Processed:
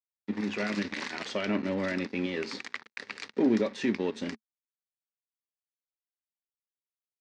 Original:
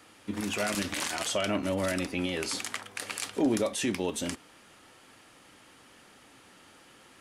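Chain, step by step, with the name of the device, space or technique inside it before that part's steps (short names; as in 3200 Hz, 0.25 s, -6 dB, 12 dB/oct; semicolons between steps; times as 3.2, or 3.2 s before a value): blown loudspeaker (crossover distortion -42 dBFS; speaker cabinet 130–4900 Hz, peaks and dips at 220 Hz +8 dB, 410 Hz +5 dB, 690 Hz -6 dB, 1300 Hz -3 dB, 1900 Hz +5 dB, 3100 Hz -6 dB)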